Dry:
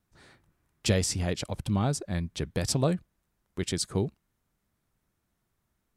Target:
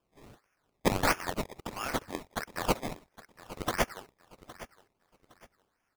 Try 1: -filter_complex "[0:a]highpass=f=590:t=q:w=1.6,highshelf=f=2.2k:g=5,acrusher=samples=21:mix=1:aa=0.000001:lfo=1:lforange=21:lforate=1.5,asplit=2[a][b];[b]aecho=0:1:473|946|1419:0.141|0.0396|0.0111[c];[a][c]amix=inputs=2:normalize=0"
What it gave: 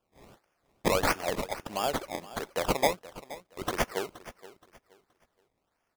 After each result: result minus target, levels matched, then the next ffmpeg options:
echo 0.34 s early; 500 Hz band +3.0 dB
-filter_complex "[0:a]highpass=f=590:t=q:w=1.6,highshelf=f=2.2k:g=5,acrusher=samples=21:mix=1:aa=0.000001:lfo=1:lforange=21:lforate=1.5,asplit=2[a][b];[b]aecho=0:1:813|1626|2439:0.141|0.0396|0.0111[c];[a][c]amix=inputs=2:normalize=0"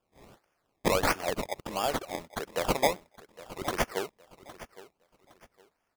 500 Hz band +3.0 dB
-filter_complex "[0:a]highpass=f=1.5k:t=q:w=1.6,highshelf=f=2.2k:g=5,acrusher=samples=21:mix=1:aa=0.000001:lfo=1:lforange=21:lforate=1.5,asplit=2[a][b];[b]aecho=0:1:813|1626|2439:0.141|0.0396|0.0111[c];[a][c]amix=inputs=2:normalize=0"

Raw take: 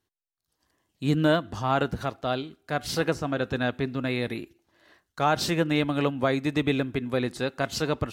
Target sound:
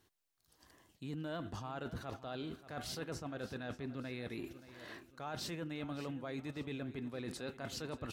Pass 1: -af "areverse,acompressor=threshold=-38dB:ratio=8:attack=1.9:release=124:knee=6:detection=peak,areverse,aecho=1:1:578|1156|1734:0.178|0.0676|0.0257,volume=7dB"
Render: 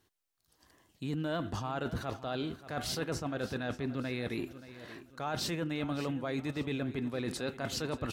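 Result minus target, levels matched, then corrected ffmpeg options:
compressor: peak gain reduction -7.5 dB
-af "areverse,acompressor=threshold=-46.5dB:ratio=8:attack=1.9:release=124:knee=6:detection=peak,areverse,aecho=1:1:578|1156|1734:0.178|0.0676|0.0257,volume=7dB"

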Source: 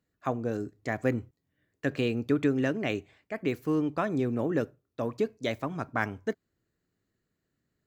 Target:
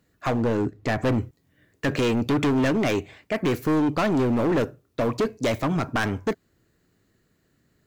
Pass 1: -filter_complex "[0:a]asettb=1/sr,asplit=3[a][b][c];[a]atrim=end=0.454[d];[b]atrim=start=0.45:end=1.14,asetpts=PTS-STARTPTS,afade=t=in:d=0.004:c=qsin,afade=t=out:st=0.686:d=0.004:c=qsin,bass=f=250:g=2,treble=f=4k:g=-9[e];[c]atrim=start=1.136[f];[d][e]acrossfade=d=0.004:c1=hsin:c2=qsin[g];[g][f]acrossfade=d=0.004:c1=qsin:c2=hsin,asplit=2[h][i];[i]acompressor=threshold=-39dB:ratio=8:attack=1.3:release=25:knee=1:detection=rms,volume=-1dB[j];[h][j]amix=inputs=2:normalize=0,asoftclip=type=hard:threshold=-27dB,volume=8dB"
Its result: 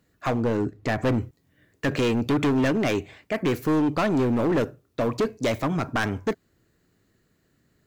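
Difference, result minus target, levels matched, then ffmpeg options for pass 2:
compressor: peak gain reduction +6 dB
-filter_complex "[0:a]asettb=1/sr,asplit=3[a][b][c];[a]atrim=end=0.454[d];[b]atrim=start=0.45:end=1.14,asetpts=PTS-STARTPTS,afade=t=in:d=0.004:c=qsin,afade=t=out:st=0.686:d=0.004:c=qsin,bass=f=250:g=2,treble=f=4k:g=-9[e];[c]atrim=start=1.136[f];[d][e]acrossfade=d=0.004:c1=hsin:c2=qsin[g];[g][f]acrossfade=d=0.004:c1=qsin:c2=hsin,asplit=2[h][i];[i]acompressor=threshold=-32dB:ratio=8:attack=1.3:release=25:knee=1:detection=rms,volume=-1dB[j];[h][j]amix=inputs=2:normalize=0,asoftclip=type=hard:threshold=-27dB,volume=8dB"

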